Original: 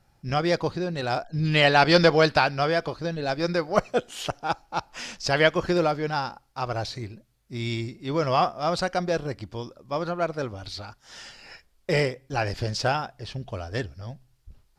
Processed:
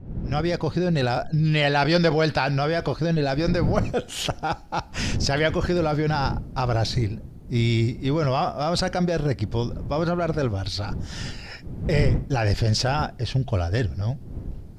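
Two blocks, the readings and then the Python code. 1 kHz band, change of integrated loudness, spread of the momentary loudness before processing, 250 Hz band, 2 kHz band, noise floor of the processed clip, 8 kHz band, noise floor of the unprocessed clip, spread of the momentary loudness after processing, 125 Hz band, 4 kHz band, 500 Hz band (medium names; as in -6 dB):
-1.0 dB, +1.0 dB, 18 LU, +4.5 dB, -2.0 dB, -41 dBFS, +4.0 dB, -65 dBFS, 9 LU, +7.5 dB, +0.5 dB, 0.0 dB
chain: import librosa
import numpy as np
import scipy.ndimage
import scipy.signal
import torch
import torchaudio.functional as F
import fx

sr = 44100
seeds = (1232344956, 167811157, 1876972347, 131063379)

p1 = fx.fade_in_head(x, sr, length_s=1.01)
p2 = fx.dmg_wind(p1, sr, seeds[0], corner_hz=190.0, level_db=-39.0)
p3 = fx.peak_eq(p2, sr, hz=1100.0, db=-3.5, octaves=0.27)
p4 = fx.over_compress(p3, sr, threshold_db=-30.0, ratio=-1.0)
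p5 = p3 + (p4 * 10.0 ** (3.0 / 20.0))
p6 = fx.low_shelf(p5, sr, hz=210.0, db=7.5)
y = p6 * 10.0 ** (-4.5 / 20.0)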